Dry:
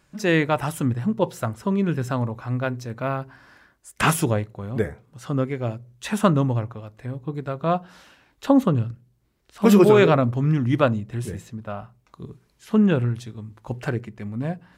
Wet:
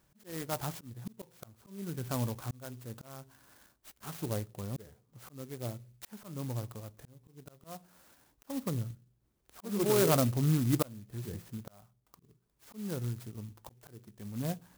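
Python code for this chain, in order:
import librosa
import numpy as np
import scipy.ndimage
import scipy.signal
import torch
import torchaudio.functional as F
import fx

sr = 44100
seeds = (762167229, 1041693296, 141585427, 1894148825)

y = fx.auto_swell(x, sr, attack_ms=627.0)
y = fx.clock_jitter(y, sr, seeds[0], jitter_ms=0.11)
y = y * librosa.db_to_amplitude(-7.0)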